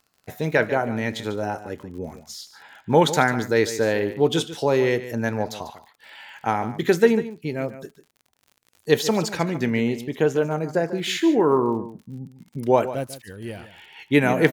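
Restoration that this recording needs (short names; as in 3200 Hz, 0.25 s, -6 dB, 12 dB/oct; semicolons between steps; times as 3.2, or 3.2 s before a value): de-click; inverse comb 0.145 s -13.5 dB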